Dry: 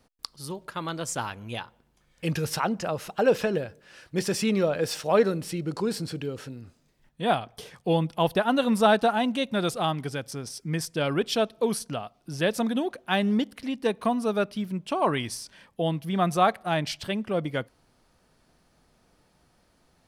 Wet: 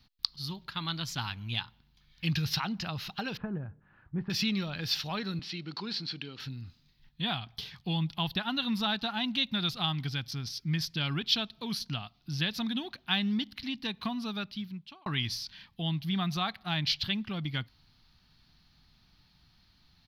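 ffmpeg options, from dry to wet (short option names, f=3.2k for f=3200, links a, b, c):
-filter_complex "[0:a]asettb=1/sr,asplit=3[a][b][c];[a]atrim=end=3.374[d];[b]atrim=start=3.37:end=4.3,asetpts=PTS-STARTPTS,afade=t=in:d=0.004:c=qsin,afade=t=out:st=0.926:d=0.004:c=qsin,lowpass=f=1.3k:w=0.5412,lowpass=f=1.3k:w=1.3066[e];[c]atrim=start=4.296[f];[d][e]acrossfade=d=0.004:c1=hsin:c2=qsin[g];[g][f]acrossfade=d=0.004:c1=qsin:c2=hsin,asettb=1/sr,asplit=3[h][i][j];[h]atrim=end=5.394[k];[i]atrim=start=5.39:end=6.4,asetpts=PTS-STARTPTS,afade=t=in:d=0.004:c=qsin,afade=t=out:st=1.006:d=0.004:c=qsin,highpass=280,lowpass=5k[l];[j]atrim=start=6.396[m];[k][l]acrossfade=d=0.004:c1=hsin:c2=qsin[n];[n][m]acrossfade=d=0.004:c1=qsin:c2=hsin,asplit=2[o][p];[o]atrim=end=15.06,asetpts=PTS-STARTPTS,afade=t=out:st=14.23:d=0.83[q];[p]atrim=start=15.06,asetpts=PTS-STARTPTS,afade=t=in:d=0.004:c=hsin[r];[q][r]concat=n=2:v=0:a=1,acompressor=threshold=-26dB:ratio=2,firequalizer=gain_entry='entry(120,0);entry(510,-24);entry(800,-10);entry(4100,7);entry(8400,-25);entry(13000,-4)':delay=0.05:min_phase=1,volume=3dB"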